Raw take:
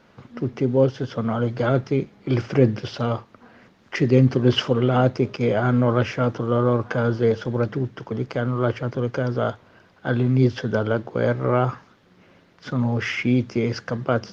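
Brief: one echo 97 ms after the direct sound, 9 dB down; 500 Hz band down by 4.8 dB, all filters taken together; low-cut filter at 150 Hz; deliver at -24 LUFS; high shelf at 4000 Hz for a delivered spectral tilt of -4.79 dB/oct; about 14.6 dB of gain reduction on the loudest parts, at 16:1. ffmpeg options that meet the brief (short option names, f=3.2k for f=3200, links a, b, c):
-af "highpass=150,equalizer=f=500:t=o:g=-6,highshelf=f=4k:g=6,acompressor=threshold=-28dB:ratio=16,aecho=1:1:97:0.355,volume=9.5dB"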